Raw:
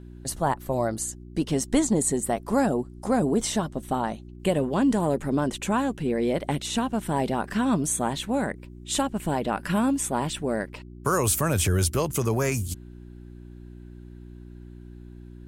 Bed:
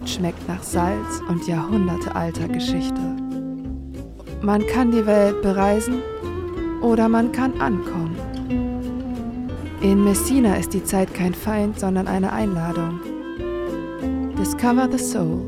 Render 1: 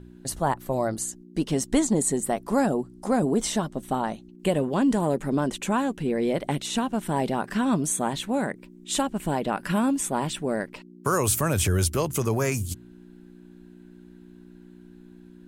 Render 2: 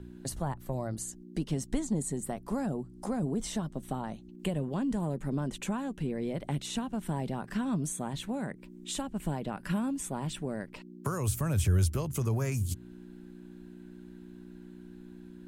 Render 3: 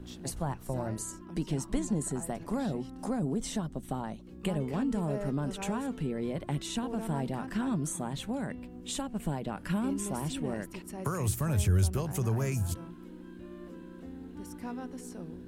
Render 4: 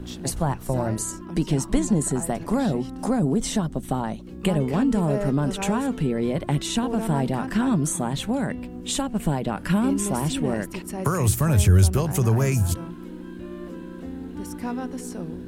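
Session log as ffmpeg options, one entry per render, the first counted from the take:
-af "bandreject=f=60:t=h:w=4,bandreject=f=120:t=h:w=4"
-filter_complex "[0:a]acrossover=split=170[s0][s1];[s1]acompressor=threshold=0.0126:ratio=3[s2];[s0][s2]amix=inputs=2:normalize=0"
-filter_complex "[1:a]volume=0.075[s0];[0:a][s0]amix=inputs=2:normalize=0"
-af "volume=2.99"

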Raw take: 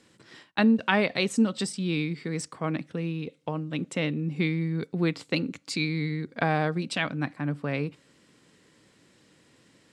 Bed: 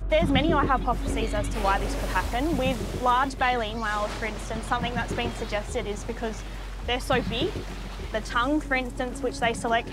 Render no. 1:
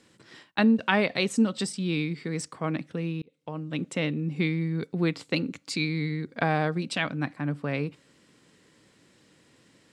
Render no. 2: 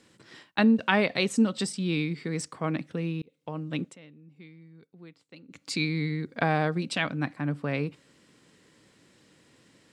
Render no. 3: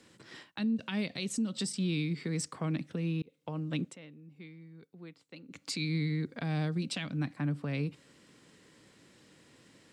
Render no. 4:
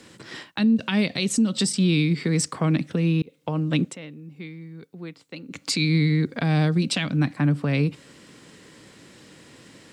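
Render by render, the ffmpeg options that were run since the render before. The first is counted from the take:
-filter_complex "[0:a]asplit=2[s0][s1];[s0]atrim=end=3.22,asetpts=PTS-STARTPTS,afade=t=out:st=3.216:d=0.004:c=hsin[s2];[s1]atrim=start=3.22,asetpts=PTS-STARTPTS,afade=t=in:d=0.51[s3];[s2][s3]concat=n=2:v=0:a=1"
-filter_complex "[0:a]asplit=3[s0][s1][s2];[s0]atrim=end=3.97,asetpts=PTS-STARTPTS,afade=t=out:st=3.74:d=0.23:c=qsin:silence=0.0707946[s3];[s1]atrim=start=3.97:end=5.48,asetpts=PTS-STARTPTS,volume=0.0708[s4];[s2]atrim=start=5.48,asetpts=PTS-STARTPTS,afade=t=in:d=0.23:c=qsin:silence=0.0707946[s5];[s3][s4][s5]concat=n=3:v=0:a=1"
-filter_complex "[0:a]acrossover=split=280|3000[s0][s1][s2];[s1]acompressor=threshold=0.0112:ratio=6[s3];[s0][s3][s2]amix=inputs=3:normalize=0,alimiter=level_in=1.06:limit=0.0631:level=0:latency=1:release=179,volume=0.944"
-af "volume=3.76"

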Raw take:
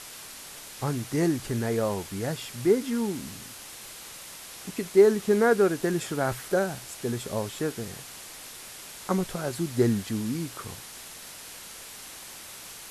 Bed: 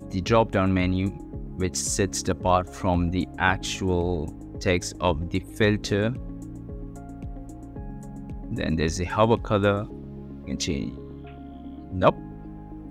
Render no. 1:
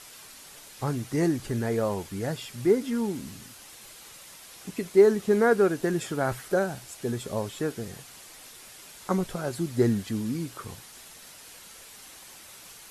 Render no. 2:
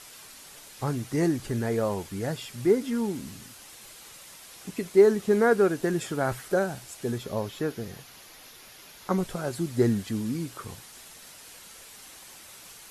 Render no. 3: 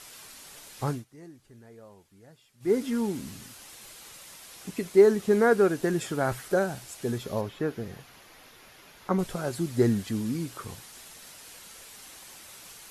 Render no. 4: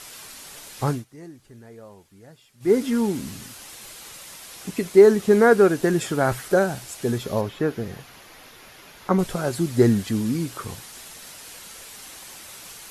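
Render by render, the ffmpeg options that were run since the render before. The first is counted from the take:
-af "afftdn=nr=6:nf=-44"
-filter_complex "[0:a]asettb=1/sr,asplit=3[s0][s1][s2];[s0]atrim=end=7.184[s3];[s1]atrim=start=7.18:end=9.18,asetpts=PTS-STARTPTS,afade=t=in:d=0.004:c=qsin,afade=t=out:st=1.996:d=0.004:c=qsin,equalizer=f=8200:t=o:w=0.3:g=-13[s4];[s2]atrim=start=9.176[s5];[s3][s4]acrossfade=d=0.004:c1=hsin:c2=qsin[s6];[s6][s5]acrossfade=d=0.004:c1=qsin:c2=hsin"
-filter_complex "[0:a]asettb=1/sr,asplit=3[s0][s1][s2];[s0]atrim=end=7.414[s3];[s1]atrim=start=7.41:end=9.19,asetpts=PTS-STARTPTS,afade=t=in:d=0.004:c=qsin,afade=t=out:st=1.776:d=0.004:c=qsin,acrossover=split=2900[s4][s5];[s5]acompressor=threshold=0.00178:ratio=4:attack=1:release=60[s6];[s4][s6]amix=inputs=2:normalize=0[s7];[s2]atrim=start=9.186[s8];[s3][s7]acrossfade=d=0.004:c1=hsin:c2=qsin[s9];[s9][s8]acrossfade=d=0.004:c1=qsin:c2=hsin,asplit=3[s10][s11][s12];[s10]atrim=end=1.05,asetpts=PTS-STARTPTS,afade=t=out:st=0.89:d=0.16:silence=0.0707946[s13];[s11]atrim=start=1.05:end=2.6,asetpts=PTS-STARTPTS,volume=0.0708[s14];[s12]atrim=start=2.6,asetpts=PTS-STARTPTS,afade=t=in:d=0.16:silence=0.0707946[s15];[s13][s14][s15]concat=n=3:v=0:a=1"
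-af "volume=2,alimiter=limit=0.708:level=0:latency=1"

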